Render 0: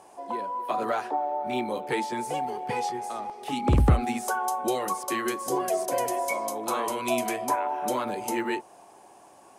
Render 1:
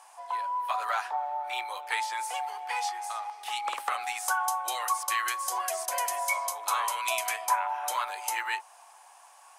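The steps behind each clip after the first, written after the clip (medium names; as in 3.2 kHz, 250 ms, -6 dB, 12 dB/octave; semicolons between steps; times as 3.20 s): high-pass 900 Hz 24 dB/octave; trim +3 dB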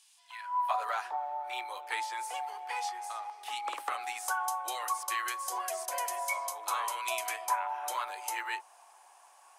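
high-pass sweep 3.5 kHz -> 300 Hz, 0.22–0.96 s; trim -5 dB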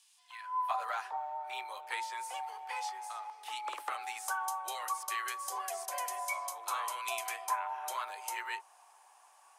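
frequency shift +22 Hz; trim -3 dB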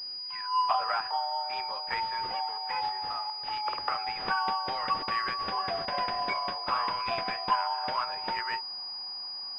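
class-D stage that switches slowly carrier 4.9 kHz; trim +7 dB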